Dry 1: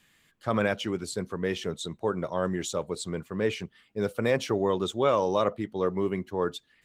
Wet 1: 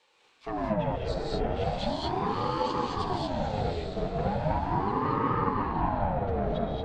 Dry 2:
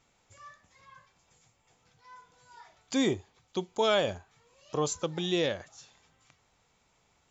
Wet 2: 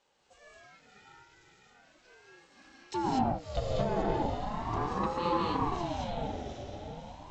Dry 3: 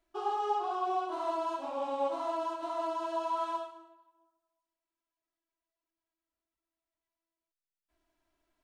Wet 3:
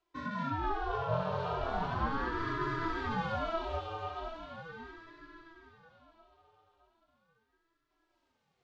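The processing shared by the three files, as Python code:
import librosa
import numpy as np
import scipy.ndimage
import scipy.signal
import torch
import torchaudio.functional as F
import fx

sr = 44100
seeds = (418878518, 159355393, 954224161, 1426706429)

p1 = fx.env_lowpass_down(x, sr, base_hz=870.0, full_db=-23.5)
p2 = fx.highpass(p1, sr, hz=180.0, slope=6)
p3 = fx.peak_eq(p2, sr, hz=930.0, db=-15.0, octaves=2.4)
p4 = fx.rider(p3, sr, range_db=10, speed_s=0.5)
p5 = p3 + (p4 * librosa.db_to_amplitude(-1.0))
p6 = 10.0 ** (-28.5 / 20.0) * np.tanh(p5 / 10.0 ** (-28.5 / 20.0))
p7 = fx.air_absorb(p6, sr, metres=150.0)
p8 = p7 + fx.echo_diffused(p7, sr, ms=620, feedback_pct=45, wet_db=-4, dry=0)
p9 = fx.rev_gated(p8, sr, seeds[0], gate_ms=260, shape='rising', drr_db=-3.0)
p10 = fx.ring_lfo(p9, sr, carrier_hz=460.0, swing_pct=50, hz=0.38)
y = p10 * librosa.db_to_amplitude(4.0)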